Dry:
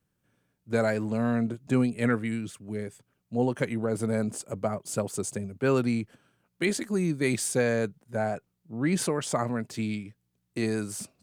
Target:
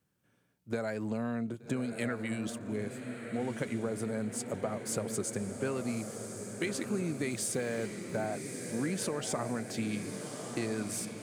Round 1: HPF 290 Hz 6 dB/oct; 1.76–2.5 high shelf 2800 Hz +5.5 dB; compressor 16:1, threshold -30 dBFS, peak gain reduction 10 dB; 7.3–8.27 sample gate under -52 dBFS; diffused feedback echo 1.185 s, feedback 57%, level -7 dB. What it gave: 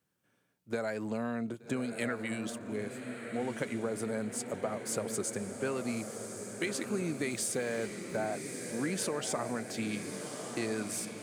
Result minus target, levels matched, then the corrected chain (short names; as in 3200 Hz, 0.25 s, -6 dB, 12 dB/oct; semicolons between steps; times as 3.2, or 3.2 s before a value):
125 Hz band -3.5 dB
HPF 96 Hz 6 dB/oct; 1.76–2.5 high shelf 2800 Hz +5.5 dB; compressor 16:1, threshold -30 dBFS, peak gain reduction 12 dB; 7.3–8.27 sample gate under -52 dBFS; diffused feedback echo 1.185 s, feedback 57%, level -7 dB